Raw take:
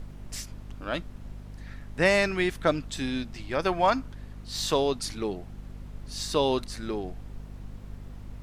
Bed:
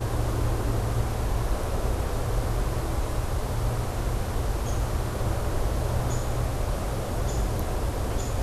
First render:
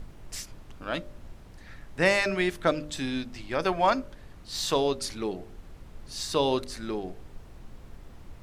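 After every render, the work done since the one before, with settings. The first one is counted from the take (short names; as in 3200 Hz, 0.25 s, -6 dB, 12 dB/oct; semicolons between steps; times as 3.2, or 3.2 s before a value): de-hum 50 Hz, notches 12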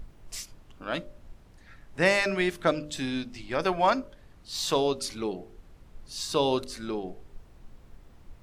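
noise print and reduce 6 dB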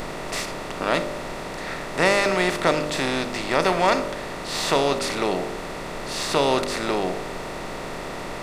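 per-bin compression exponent 0.4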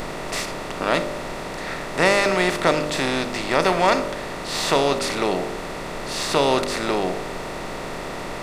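gain +1.5 dB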